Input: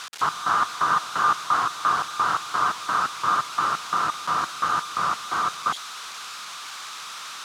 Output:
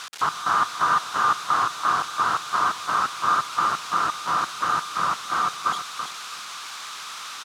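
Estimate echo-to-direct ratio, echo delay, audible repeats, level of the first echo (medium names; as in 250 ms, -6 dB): -8.0 dB, 332 ms, 2, -8.0 dB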